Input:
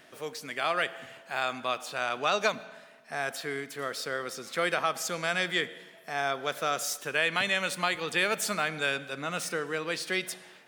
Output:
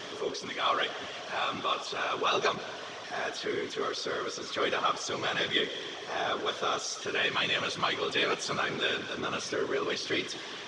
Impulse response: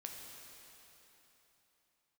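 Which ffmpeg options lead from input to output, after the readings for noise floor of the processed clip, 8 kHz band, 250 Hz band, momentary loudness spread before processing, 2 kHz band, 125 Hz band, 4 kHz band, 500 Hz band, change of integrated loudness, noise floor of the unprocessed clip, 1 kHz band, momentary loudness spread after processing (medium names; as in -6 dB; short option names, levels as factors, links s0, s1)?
-41 dBFS, -3.5 dB, +1.0 dB, 10 LU, -2.5 dB, -2.5 dB, +3.0 dB, 0.0 dB, -0.5 dB, -54 dBFS, 0.0 dB, 7 LU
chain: -af "aeval=exprs='val(0)+0.5*0.0224*sgn(val(0))':c=same,afftfilt=real='hypot(re,im)*cos(2*PI*random(0))':imag='hypot(re,im)*sin(2*PI*random(1))':win_size=512:overlap=0.75,highpass=110,equalizer=f=110:t=q:w=4:g=5,equalizer=f=280:t=q:w=4:g=3,equalizer=f=410:t=q:w=4:g=9,equalizer=f=1100:t=q:w=4:g=8,equalizer=f=3300:t=q:w=4:g=9,equalizer=f=5800:t=q:w=4:g=6,lowpass=f=6100:w=0.5412,lowpass=f=6100:w=1.3066"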